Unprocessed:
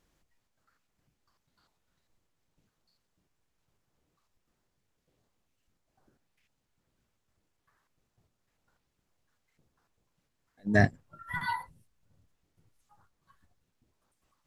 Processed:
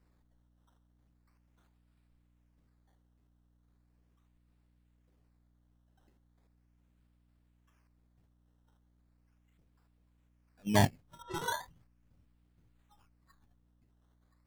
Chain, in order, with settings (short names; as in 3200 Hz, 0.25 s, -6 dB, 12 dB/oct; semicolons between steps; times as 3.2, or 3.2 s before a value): decimation with a swept rate 13×, swing 100% 0.38 Hz; hum 60 Hz, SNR 27 dB; 11.22–11.65 low-pass opened by the level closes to 2200 Hz, open at -33.5 dBFS; gain -3 dB